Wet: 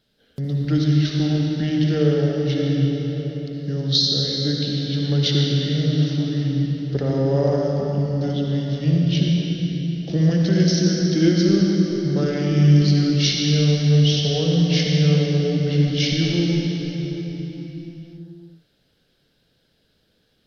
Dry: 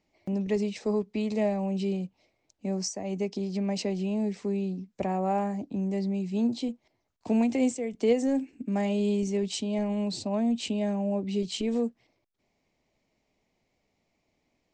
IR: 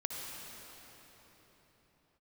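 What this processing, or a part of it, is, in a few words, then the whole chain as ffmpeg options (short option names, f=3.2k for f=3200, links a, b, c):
slowed and reverbed: -filter_complex "[0:a]highshelf=f=3.7k:t=q:w=1.5:g=7.5,asetrate=31752,aresample=44100[a];[1:a]atrim=start_sample=2205[b];[a][b]afir=irnorm=-1:irlink=0,volume=6.5dB"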